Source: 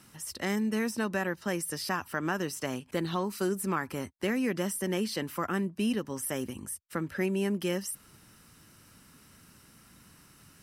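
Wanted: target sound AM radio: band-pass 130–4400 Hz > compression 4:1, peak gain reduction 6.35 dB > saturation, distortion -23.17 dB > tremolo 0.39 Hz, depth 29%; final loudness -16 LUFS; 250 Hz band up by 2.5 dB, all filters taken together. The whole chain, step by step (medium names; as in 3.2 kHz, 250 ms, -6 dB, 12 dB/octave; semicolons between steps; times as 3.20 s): band-pass 130–4400 Hz; peaking EQ 250 Hz +4 dB; compression 4:1, threshold -29 dBFS; saturation -22.5 dBFS; tremolo 0.39 Hz, depth 29%; trim +20.5 dB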